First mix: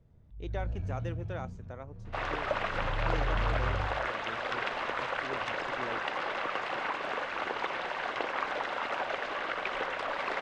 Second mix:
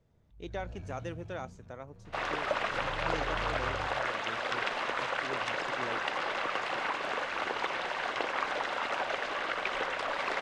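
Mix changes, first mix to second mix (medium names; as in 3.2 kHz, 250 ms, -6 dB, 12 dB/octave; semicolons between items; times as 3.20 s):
first sound: add bass shelf 220 Hz -10.5 dB; master: add treble shelf 5.4 kHz +10 dB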